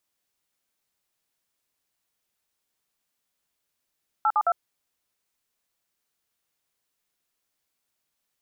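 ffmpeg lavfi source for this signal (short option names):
-f lavfi -i "aevalsrc='0.0891*clip(min(mod(t,0.108),0.054-mod(t,0.108))/0.002,0,1)*(eq(floor(t/0.108),0)*(sin(2*PI*852*mod(t,0.108))+sin(2*PI*1336*mod(t,0.108)))+eq(floor(t/0.108),1)*(sin(2*PI*852*mod(t,0.108))+sin(2*PI*1209*mod(t,0.108)))+eq(floor(t/0.108),2)*(sin(2*PI*697*mod(t,0.108))+sin(2*PI*1336*mod(t,0.108))))':d=0.324:s=44100"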